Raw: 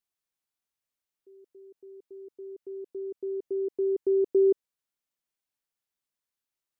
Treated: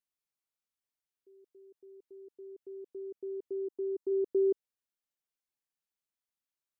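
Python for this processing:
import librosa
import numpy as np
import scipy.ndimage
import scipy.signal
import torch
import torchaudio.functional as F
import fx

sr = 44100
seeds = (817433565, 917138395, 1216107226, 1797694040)

y = fx.fixed_phaser(x, sr, hz=540.0, stages=6, at=(3.67, 4.1), fade=0.02)
y = F.gain(torch.from_numpy(y), -6.0).numpy()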